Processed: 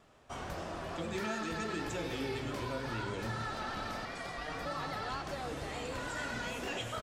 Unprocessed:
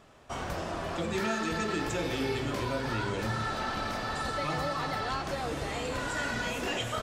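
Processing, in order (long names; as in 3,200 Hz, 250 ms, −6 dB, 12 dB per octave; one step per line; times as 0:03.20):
pitch vibrato 6.8 Hz 41 cents
far-end echo of a speakerphone 100 ms, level −12 dB
0:04.05–0:04.66: ring modulation 610 Hz
level −6 dB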